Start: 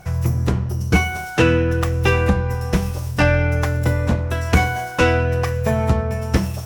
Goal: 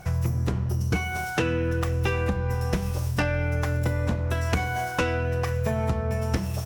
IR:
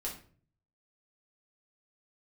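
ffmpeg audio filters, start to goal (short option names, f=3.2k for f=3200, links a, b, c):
-filter_complex "[0:a]acompressor=threshold=-21dB:ratio=6,asplit=2[a][b];[b]aecho=0:1:487:0.0668[c];[a][c]amix=inputs=2:normalize=0,volume=-1dB"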